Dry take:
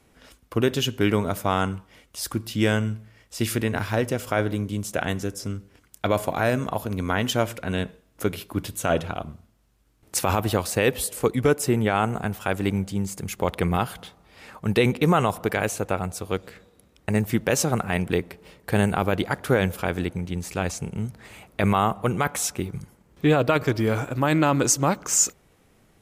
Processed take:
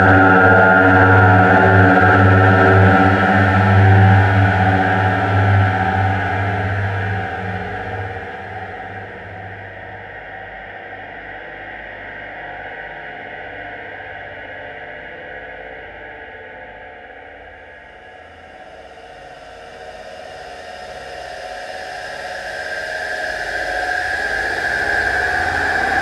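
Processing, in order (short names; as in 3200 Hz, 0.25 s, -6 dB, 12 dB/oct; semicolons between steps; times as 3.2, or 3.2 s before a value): expander -51 dBFS; tilt -3.5 dB/oct; in parallel at -6 dB: bit-crush 5-bit; on the sum: chorus voices 6, 0.56 Hz, delay 13 ms, depth 2 ms; Paulstretch 45×, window 0.25 s, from 1.68; double band-pass 1100 Hz, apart 1.1 oct; on a send: swung echo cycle 0.991 s, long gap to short 1.5:1, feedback 49%, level -16 dB; on the sum: spring tank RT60 1.6 s, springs 60 ms, chirp 35 ms, DRR -4 dB; maximiser +31.5 dB; gain -1 dB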